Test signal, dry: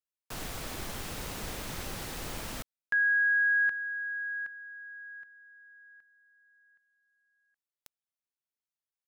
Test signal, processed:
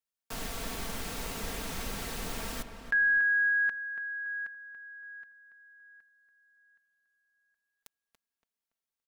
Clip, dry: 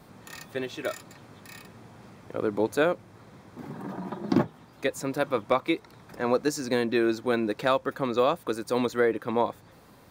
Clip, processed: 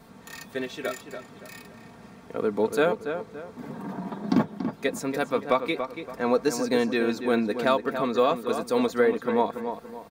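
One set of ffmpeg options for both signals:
-filter_complex "[0:a]aecho=1:1:4.4:0.49,asplit=2[s0][s1];[s1]adelay=284,lowpass=f=2600:p=1,volume=0.398,asplit=2[s2][s3];[s3]adelay=284,lowpass=f=2600:p=1,volume=0.37,asplit=2[s4][s5];[s5]adelay=284,lowpass=f=2600:p=1,volume=0.37,asplit=2[s6][s7];[s7]adelay=284,lowpass=f=2600:p=1,volume=0.37[s8];[s2][s4][s6][s8]amix=inputs=4:normalize=0[s9];[s0][s9]amix=inputs=2:normalize=0"

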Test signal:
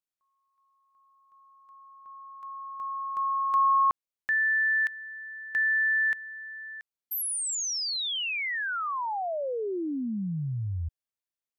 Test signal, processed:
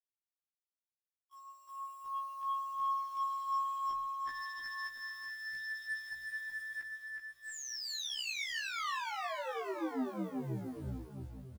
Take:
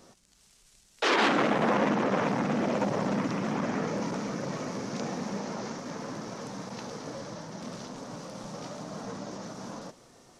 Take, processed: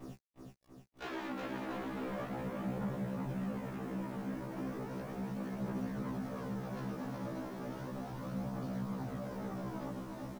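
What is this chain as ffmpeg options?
-filter_complex "[0:a]aemphasis=mode=reproduction:type=75fm,bandreject=f=60:t=h:w=6,bandreject=f=120:t=h:w=6,bandreject=f=180:t=h:w=6,bandreject=f=240:t=h:w=6,bandreject=f=300:t=h:w=6,bandreject=f=360:t=h:w=6,bandreject=f=420:t=h:w=6,bandreject=f=480:t=h:w=6,bandreject=f=540:t=h:w=6,agate=range=0.0224:threshold=0.00178:ratio=3:release=119:detection=rms,bass=f=250:g=10,treble=f=4000:g=-7,acompressor=threshold=0.01:ratio=5:attack=3:release=112:knee=1:detection=rms,aresample=16000,asoftclip=type=hard:threshold=0.01,aresample=44100,acrusher=bits=10:mix=0:aa=0.000001,aphaser=in_gain=1:out_gain=1:delay=3.8:decay=0.53:speed=0.35:type=triangular,asoftclip=type=tanh:threshold=0.0141,acrusher=bits=8:mode=log:mix=0:aa=0.000001,asplit=2[s0][s1];[s1]aecho=0:1:370|684.5|951.8|1179|1372:0.631|0.398|0.251|0.158|0.1[s2];[s0][s2]amix=inputs=2:normalize=0,afftfilt=real='re*1.73*eq(mod(b,3),0)':imag='im*1.73*eq(mod(b,3),0)':win_size=2048:overlap=0.75,volume=1.68"

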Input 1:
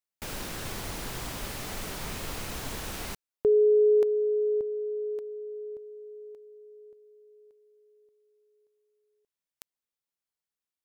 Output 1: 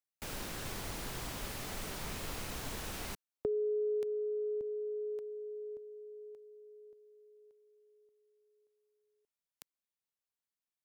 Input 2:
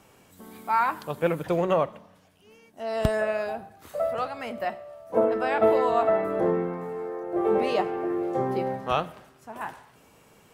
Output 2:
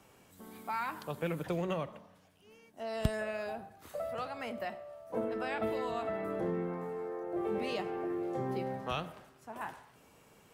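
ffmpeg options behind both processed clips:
-filter_complex "[0:a]acrossover=split=280|1900[s0][s1][s2];[s1]acompressor=threshold=0.0224:ratio=6:release=128:knee=2.83:detection=peak[s3];[s0][s3][s2]amix=inputs=3:normalize=0,volume=0.562"

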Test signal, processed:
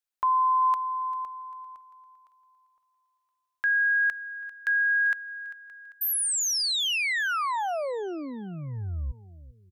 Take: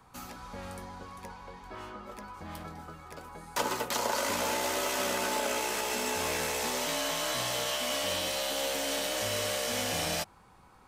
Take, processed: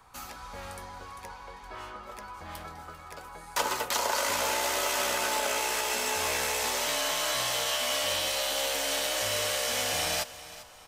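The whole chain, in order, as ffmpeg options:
-filter_complex "[0:a]equalizer=f=200:t=o:w=2.1:g=-10.5,asplit=2[s0][s1];[s1]aecho=0:1:395|790|1185|1580:0.15|0.0613|0.0252|0.0103[s2];[s0][s2]amix=inputs=2:normalize=0,volume=1.5"

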